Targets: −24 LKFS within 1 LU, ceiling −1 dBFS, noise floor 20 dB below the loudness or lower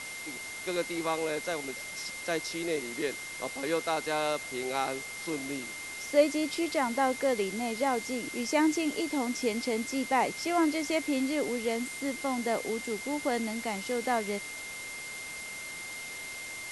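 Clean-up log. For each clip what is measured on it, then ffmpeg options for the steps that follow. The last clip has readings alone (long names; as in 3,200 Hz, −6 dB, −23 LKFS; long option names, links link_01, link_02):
interfering tone 2,100 Hz; level of the tone −40 dBFS; background noise floor −41 dBFS; target noise floor −52 dBFS; integrated loudness −31.5 LKFS; sample peak −11.5 dBFS; target loudness −24.0 LKFS
→ -af "bandreject=frequency=2100:width=30"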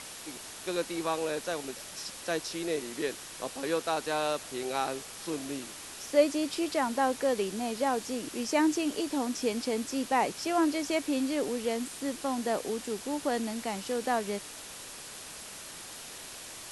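interfering tone none found; background noise floor −45 dBFS; target noise floor −52 dBFS
→ -af "afftdn=noise_reduction=7:noise_floor=-45"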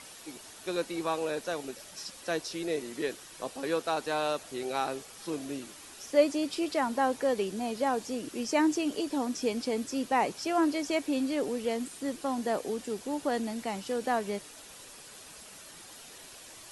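background noise floor −49 dBFS; target noise floor −52 dBFS
→ -af "afftdn=noise_reduction=6:noise_floor=-49"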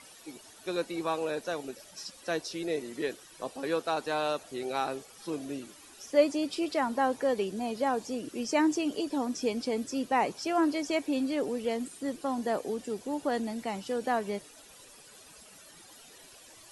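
background noise floor −54 dBFS; integrated loudness −32.0 LKFS; sample peak −11.5 dBFS; target loudness −24.0 LKFS
→ -af "volume=8dB"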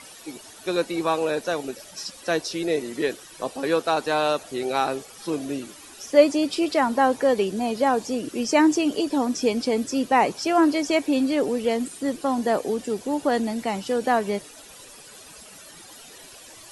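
integrated loudness −24.0 LKFS; sample peak −3.5 dBFS; background noise floor −46 dBFS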